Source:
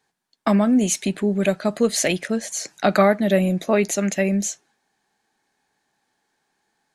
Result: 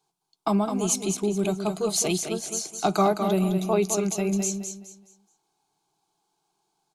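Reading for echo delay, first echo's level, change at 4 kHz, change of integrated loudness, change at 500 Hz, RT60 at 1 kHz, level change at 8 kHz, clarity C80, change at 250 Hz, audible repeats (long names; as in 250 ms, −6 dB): 211 ms, −7.0 dB, −3.0 dB, −4.5 dB, −5.0 dB, no reverb audible, −1.0 dB, no reverb audible, −5.5 dB, 3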